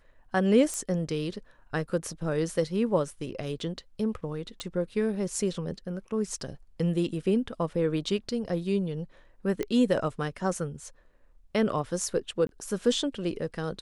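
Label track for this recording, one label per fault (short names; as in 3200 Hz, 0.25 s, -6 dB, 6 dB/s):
0.740000	0.740000	pop -20 dBFS
4.600000	4.600000	pop -21 dBFS
9.630000	9.630000	pop -18 dBFS
12.470000	12.490000	gap 22 ms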